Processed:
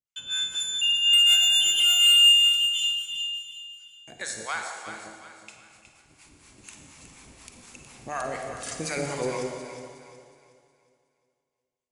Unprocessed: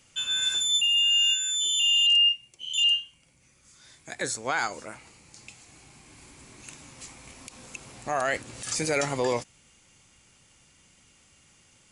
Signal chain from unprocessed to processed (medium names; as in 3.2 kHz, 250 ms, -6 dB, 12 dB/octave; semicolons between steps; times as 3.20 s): harmonic tremolo 4.1 Hz, depth 100%, crossover 730 Hz; gate -55 dBFS, range -35 dB; Schroeder reverb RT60 1.8 s, DRR 3.5 dB; 1.13–2.67 s: waveshaping leveller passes 2; 4.45–4.86 s: high-pass 480 Hz -> 1.1 kHz 12 dB/octave; echo whose repeats swap between lows and highs 183 ms, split 820 Hz, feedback 61%, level -5 dB